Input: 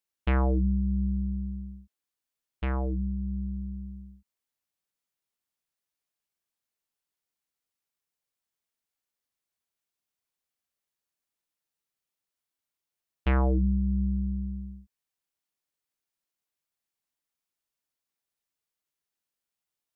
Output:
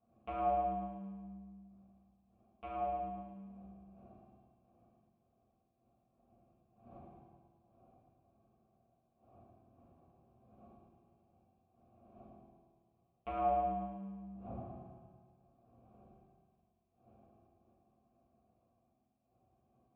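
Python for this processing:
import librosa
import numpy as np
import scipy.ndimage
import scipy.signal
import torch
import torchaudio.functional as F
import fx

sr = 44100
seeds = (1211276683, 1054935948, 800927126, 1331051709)

y = fx.dmg_wind(x, sr, seeds[0], corner_hz=140.0, level_db=-46.0)
y = fx.vowel_filter(y, sr, vowel='a')
y = fx.low_shelf(y, sr, hz=140.0, db=6.0)
y = fx.env_lowpass_down(y, sr, base_hz=1200.0, full_db=-46.0)
y = fx.echo_feedback(y, sr, ms=109, feedback_pct=58, wet_db=-7.0)
y = fx.quant_float(y, sr, bits=8)
y = fx.rev_fdn(y, sr, rt60_s=1.5, lf_ratio=1.25, hf_ratio=0.95, size_ms=26.0, drr_db=-9.0)
y = y * librosa.db_to_amplitude(-3.5)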